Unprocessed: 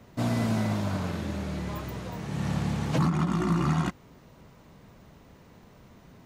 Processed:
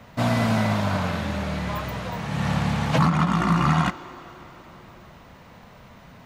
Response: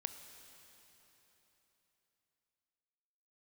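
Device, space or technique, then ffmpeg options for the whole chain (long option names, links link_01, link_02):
filtered reverb send: -filter_complex "[0:a]asplit=2[link_01][link_02];[link_02]highpass=frequency=350:width=0.5412,highpass=frequency=350:width=1.3066,lowpass=4600[link_03];[1:a]atrim=start_sample=2205[link_04];[link_03][link_04]afir=irnorm=-1:irlink=0,volume=1.5dB[link_05];[link_01][link_05]amix=inputs=2:normalize=0,volume=4.5dB"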